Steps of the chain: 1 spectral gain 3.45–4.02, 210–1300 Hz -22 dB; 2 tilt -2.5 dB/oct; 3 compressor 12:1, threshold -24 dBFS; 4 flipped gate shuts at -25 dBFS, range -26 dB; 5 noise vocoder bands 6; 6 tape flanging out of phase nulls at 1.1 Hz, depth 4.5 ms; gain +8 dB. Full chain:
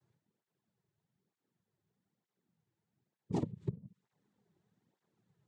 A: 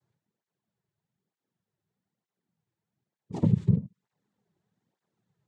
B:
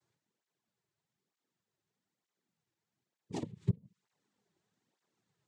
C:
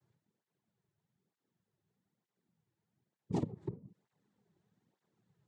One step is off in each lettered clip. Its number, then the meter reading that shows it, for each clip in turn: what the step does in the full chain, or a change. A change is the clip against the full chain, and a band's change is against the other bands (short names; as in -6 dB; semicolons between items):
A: 4, 125 Hz band +11.0 dB; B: 2, 500 Hz band -6.0 dB; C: 1, momentary loudness spread change +2 LU